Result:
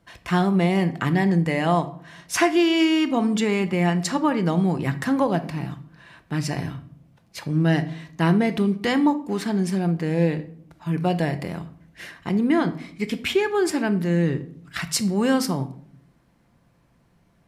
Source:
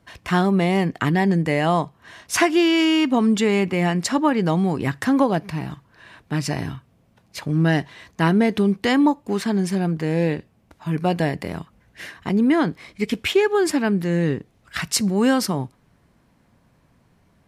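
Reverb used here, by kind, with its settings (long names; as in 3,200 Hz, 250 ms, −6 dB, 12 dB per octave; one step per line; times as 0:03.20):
rectangular room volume 890 cubic metres, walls furnished, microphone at 0.81 metres
level −3 dB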